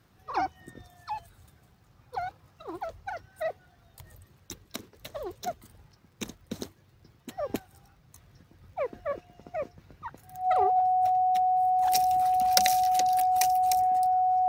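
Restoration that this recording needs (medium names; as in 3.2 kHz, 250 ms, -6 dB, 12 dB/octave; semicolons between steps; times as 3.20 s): de-click; band-stop 740 Hz, Q 30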